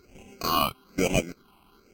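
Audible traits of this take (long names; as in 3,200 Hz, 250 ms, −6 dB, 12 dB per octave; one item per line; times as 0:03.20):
aliases and images of a low sample rate 1,800 Hz, jitter 0%
phaser sweep stages 6, 1.1 Hz, lowest notch 480–1,200 Hz
Ogg Vorbis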